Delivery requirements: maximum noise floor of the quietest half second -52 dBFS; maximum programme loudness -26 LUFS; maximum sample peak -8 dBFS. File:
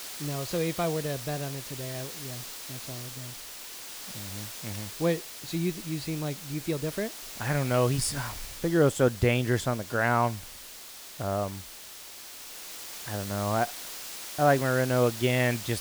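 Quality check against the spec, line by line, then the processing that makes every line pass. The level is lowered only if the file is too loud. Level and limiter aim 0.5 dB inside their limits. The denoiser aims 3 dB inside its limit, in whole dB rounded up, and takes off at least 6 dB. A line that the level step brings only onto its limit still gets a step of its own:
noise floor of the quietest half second -45 dBFS: fail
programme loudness -29.5 LUFS: OK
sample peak -9.5 dBFS: OK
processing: denoiser 10 dB, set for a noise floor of -45 dBFS

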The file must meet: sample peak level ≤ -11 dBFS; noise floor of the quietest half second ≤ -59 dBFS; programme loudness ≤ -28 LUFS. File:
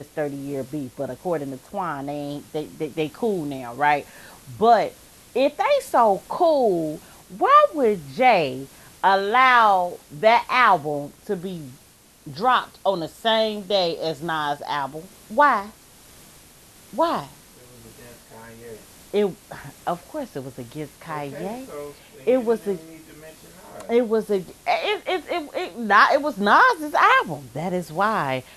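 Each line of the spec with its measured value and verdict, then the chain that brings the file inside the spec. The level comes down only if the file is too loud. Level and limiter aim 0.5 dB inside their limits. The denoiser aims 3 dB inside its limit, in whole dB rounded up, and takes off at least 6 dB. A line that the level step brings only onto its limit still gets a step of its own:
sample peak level -3.5 dBFS: fail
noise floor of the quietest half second -52 dBFS: fail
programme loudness -21.5 LUFS: fail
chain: denoiser 6 dB, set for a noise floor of -52 dBFS; gain -7 dB; limiter -11.5 dBFS

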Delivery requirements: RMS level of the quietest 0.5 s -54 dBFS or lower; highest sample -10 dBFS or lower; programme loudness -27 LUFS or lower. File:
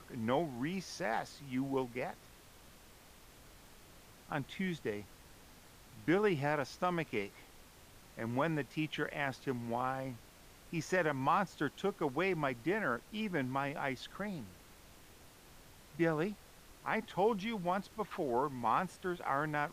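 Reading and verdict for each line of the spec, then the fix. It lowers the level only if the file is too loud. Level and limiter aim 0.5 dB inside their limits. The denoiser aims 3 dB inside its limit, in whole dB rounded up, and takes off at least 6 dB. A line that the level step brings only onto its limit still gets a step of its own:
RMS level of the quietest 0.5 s -58 dBFS: OK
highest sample -19.5 dBFS: OK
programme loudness -36.5 LUFS: OK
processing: none

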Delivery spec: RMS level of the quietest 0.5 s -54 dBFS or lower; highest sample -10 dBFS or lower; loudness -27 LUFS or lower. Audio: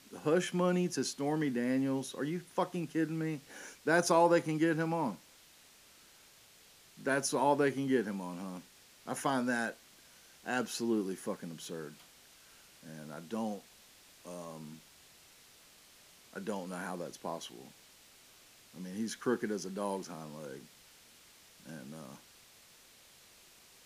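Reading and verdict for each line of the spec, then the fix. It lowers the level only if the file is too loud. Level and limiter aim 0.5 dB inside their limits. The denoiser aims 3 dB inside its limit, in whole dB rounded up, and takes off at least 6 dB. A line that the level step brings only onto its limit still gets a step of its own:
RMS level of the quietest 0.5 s -61 dBFS: OK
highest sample -14.5 dBFS: OK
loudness -34.0 LUFS: OK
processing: none

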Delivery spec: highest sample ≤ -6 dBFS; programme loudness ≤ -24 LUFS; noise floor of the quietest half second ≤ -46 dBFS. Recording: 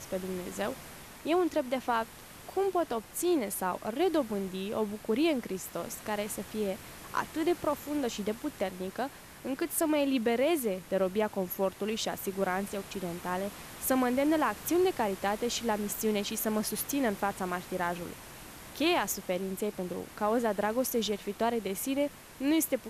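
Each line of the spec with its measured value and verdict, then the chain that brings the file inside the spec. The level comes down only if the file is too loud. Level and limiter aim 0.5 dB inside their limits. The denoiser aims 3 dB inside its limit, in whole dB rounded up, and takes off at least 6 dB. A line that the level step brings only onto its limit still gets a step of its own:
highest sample -16.0 dBFS: OK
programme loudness -31.5 LUFS: OK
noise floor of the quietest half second -48 dBFS: OK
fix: none

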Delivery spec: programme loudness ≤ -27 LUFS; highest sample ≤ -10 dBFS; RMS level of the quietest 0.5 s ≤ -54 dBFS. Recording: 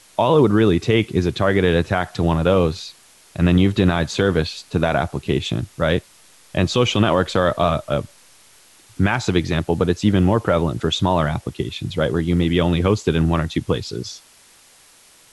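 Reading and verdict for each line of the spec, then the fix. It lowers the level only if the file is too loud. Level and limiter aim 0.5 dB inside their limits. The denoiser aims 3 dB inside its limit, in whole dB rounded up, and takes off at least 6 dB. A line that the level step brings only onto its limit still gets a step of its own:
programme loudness -19.5 LUFS: fail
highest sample -4.5 dBFS: fail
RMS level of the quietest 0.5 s -51 dBFS: fail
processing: gain -8 dB

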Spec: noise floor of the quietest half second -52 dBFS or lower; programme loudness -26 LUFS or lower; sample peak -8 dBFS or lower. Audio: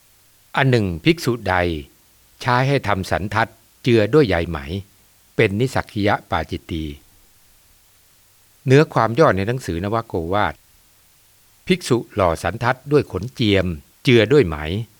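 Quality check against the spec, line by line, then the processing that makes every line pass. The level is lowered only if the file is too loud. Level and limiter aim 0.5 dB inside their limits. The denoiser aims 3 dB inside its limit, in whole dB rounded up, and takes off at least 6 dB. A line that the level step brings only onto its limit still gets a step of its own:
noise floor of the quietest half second -54 dBFS: OK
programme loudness -19.0 LUFS: fail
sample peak -2.0 dBFS: fail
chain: gain -7.5 dB

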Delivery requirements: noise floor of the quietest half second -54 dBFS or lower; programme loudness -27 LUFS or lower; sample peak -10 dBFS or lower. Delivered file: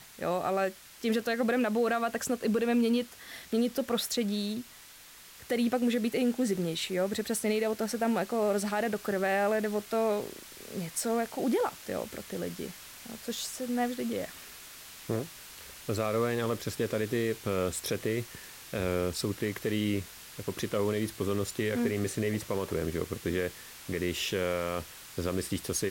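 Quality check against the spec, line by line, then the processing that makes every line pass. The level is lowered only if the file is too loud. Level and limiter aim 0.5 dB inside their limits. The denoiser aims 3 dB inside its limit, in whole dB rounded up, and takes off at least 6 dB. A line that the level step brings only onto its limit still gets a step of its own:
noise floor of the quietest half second -52 dBFS: fail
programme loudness -31.5 LUFS: OK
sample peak -16.5 dBFS: OK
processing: denoiser 6 dB, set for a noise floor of -52 dBFS

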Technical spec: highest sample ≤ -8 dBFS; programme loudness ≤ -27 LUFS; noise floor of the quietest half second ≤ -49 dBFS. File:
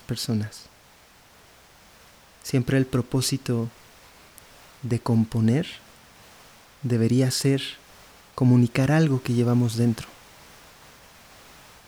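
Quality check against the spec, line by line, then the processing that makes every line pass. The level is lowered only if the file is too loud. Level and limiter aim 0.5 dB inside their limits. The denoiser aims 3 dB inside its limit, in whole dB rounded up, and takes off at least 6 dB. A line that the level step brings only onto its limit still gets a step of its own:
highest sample -7.0 dBFS: fail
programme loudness -23.5 LUFS: fail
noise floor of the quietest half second -54 dBFS: OK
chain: gain -4 dB

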